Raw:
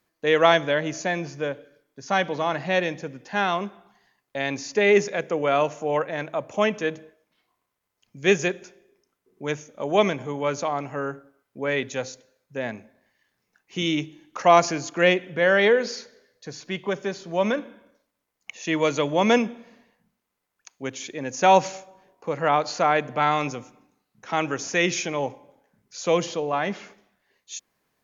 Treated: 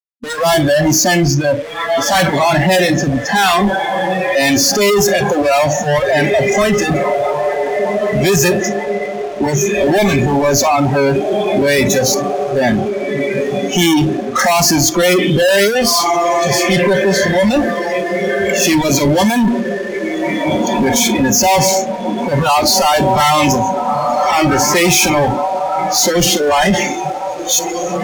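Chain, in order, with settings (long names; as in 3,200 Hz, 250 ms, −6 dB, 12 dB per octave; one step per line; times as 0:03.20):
0:24.35–0:24.84: high-shelf EQ 4,700 Hz −11 dB
feedback delay with all-pass diffusion 1,653 ms, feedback 51%, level −15 dB
fuzz pedal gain 43 dB, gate −50 dBFS
noise reduction from a noise print of the clip's start 17 dB
level +4 dB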